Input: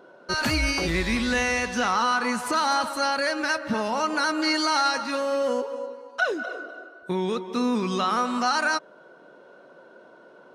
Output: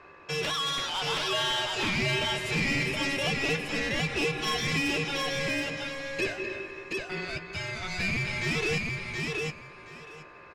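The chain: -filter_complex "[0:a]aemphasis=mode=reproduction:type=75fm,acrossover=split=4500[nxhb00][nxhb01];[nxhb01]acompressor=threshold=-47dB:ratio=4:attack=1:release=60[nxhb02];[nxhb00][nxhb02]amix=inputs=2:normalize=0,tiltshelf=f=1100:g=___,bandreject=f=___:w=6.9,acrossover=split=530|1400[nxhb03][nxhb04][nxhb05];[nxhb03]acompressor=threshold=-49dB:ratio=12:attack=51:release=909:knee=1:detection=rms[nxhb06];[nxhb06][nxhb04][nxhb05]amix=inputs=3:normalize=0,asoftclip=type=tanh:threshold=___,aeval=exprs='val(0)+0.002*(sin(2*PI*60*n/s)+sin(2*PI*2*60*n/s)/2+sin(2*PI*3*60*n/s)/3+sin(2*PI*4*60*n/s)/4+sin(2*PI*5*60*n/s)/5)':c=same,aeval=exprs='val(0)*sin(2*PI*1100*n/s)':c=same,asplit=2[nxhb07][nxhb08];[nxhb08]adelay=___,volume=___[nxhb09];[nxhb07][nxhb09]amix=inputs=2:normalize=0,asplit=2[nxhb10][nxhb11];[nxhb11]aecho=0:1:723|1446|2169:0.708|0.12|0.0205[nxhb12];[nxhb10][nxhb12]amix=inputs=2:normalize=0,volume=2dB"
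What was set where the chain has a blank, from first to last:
-7.5, 230, -24.5dB, 13, -11dB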